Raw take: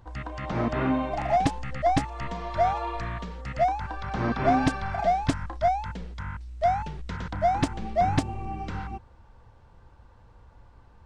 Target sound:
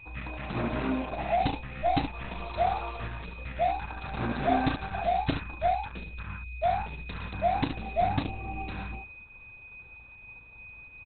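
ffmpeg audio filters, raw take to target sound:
-filter_complex "[0:a]lowpass=f=4600:t=q:w=5.2,aecho=1:1:35|71:0.398|0.447,asplit=3[s0][s1][s2];[s0]afade=t=out:st=0.8:d=0.02[s3];[s1]adynamicsmooth=sensitivity=7:basefreq=3500,afade=t=in:st=0.8:d=0.02,afade=t=out:st=1.21:d=0.02[s4];[s2]afade=t=in:st=1.21:d=0.02[s5];[s3][s4][s5]amix=inputs=3:normalize=0,aeval=exprs='val(0)+0.0112*sin(2*PI*2500*n/s)':c=same,volume=0.631" -ar 48000 -c:a libopus -b:a 8k

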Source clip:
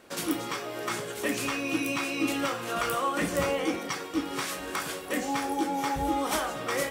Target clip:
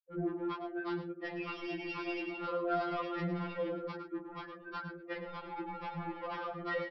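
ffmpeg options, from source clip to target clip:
-af "lowpass=3000,afftfilt=real='re*gte(hypot(re,im),0.0501)':imag='im*gte(hypot(re,im),0.0501)':win_size=1024:overlap=0.75,acompressor=threshold=0.0355:ratio=12,aresample=11025,asoftclip=type=tanh:threshold=0.0237,aresample=44100,aecho=1:1:108:0.282,afftfilt=real='re*2.83*eq(mod(b,8),0)':imag='im*2.83*eq(mod(b,8),0)':win_size=2048:overlap=0.75,volume=1.41"

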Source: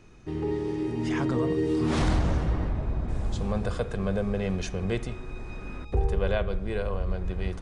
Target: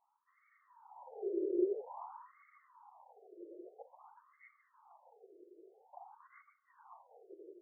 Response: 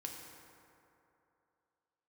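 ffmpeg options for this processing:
-filter_complex "[0:a]asplit=3[s0][s1][s2];[s0]bandpass=f=300:t=q:w=8,volume=1[s3];[s1]bandpass=f=870:t=q:w=8,volume=0.501[s4];[s2]bandpass=f=2240:t=q:w=8,volume=0.355[s5];[s3][s4][s5]amix=inputs=3:normalize=0,afftfilt=real='hypot(re,im)*cos(2*PI*random(0))':imag='hypot(re,im)*sin(2*PI*random(1))':win_size=512:overlap=0.75,afftfilt=real='re*between(b*sr/1024,450*pow(1600/450,0.5+0.5*sin(2*PI*0.5*pts/sr))/1.41,450*pow(1600/450,0.5+0.5*sin(2*PI*0.5*pts/sr))*1.41)':imag='im*between(b*sr/1024,450*pow(1600/450,0.5+0.5*sin(2*PI*0.5*pts/sr))/1.41,450*pow(1600/450,0.5+0.5*sin(2*PI*0.5*pts/sr))*1.41)':win_size=1024:overlap=0.75,volume=2.24"

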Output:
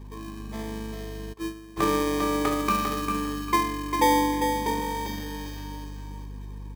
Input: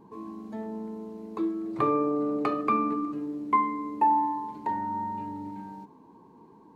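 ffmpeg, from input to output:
-filter_complex "[0:a]asplit=2[s0][s1];[s1]acrusher=samples=32:mix=1:aa=0.000001,volume=0.668[s2];[s0][s2]amix=inputs=2:normalize=0,highpass=f=200:p=1,asettb=1/sr,asplit=3[s3][s4][s5];[s3]atrim=end=2.514[s6];[s4]atrim=start=2.51:end=3.22,asetpts=PTS-STARTPTS,afade=t=in:d=0.004:c=qsin,afade=t=out:st=0.706:d=0.004:c=qsin,acrusher=bits=5:mode=log:mix=0:aa=0.000001[s7];[s5]atrim=start=3.216[s8];[s6][s7]acrossfade=d=0.004:c1=hsin:c2=qsin[s9];[s9][s8]acrossfade=d=0.004:c1=qsin:c2=hsin,tiltshelf=f=970:g=-3,aeval=exprs='val(0)+0.01*(sin(2*PI*50*n/s)+sin(2*PI*2*50*n/s)/2+sin(2*PI*3*50*n/s)/3+sin(2*PI*4*50*n/s)/4+sin(2*PI*5*50*n/s)/5)':c=same,asettb=1/sr,asplit=3[s10][s11][s12];[s10]atrim=end=3.994[s13];[s11]atrim=start=3.99:end=4.81,asetpts=PTS-STARTPTS,afade=t=in:d=0.004:c=qsin,afade=t=out:st=0.816:d=0.004:c=qsin,equalizer=f=260:w=1.4:g=9[s14];[s12]atrim=start=4.806[s15];[s13][s14]acrossfade=d=0.004:c1=hsin:c2=qsin[s16];[s16][s15]acrossfade=d=0.004:c1=qsin:c2=hsin,aecho=1:1:399|798|1197:0.501|0.125|0.0313,asplit=3[s17][s18][s19];[s17]afade=t=out:st=1.32:d=0.02[s20];[s18]agate=range=0.0224:threshold=0.0891:ratio=3:detection=peak,afade=t=in:st=1.32:d=0.02,afade=t=out:st=1.76:d=0.02[s21];[s19]afade=t=in:st=1.76:d=0.02[s22];[s20][s21][s22]amix=inputs=3:normalize=0"

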